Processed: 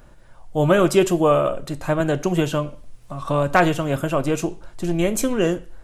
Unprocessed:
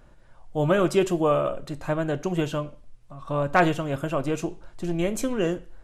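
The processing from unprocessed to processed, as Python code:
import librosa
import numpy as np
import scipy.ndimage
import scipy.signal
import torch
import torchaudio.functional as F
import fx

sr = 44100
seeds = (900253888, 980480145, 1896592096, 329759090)

y = fx.high_shelf(x, sr, hz=8500.0, db=8.0)
y = fx.band_squash(y, sr, depth_pct=40, at=(2.0, 4.0))
y = y * 10.0 ** (5.0 / 20.0)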